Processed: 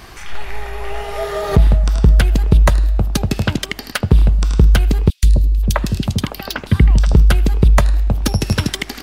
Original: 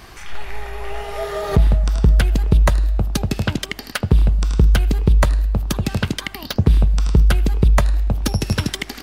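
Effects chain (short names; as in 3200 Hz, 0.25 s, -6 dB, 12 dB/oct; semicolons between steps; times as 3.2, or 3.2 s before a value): 5.1–7.14 three bands offset in time highs, lows, mids 0.13/0.53 s, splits 460/2700 Hz; gain +3 dB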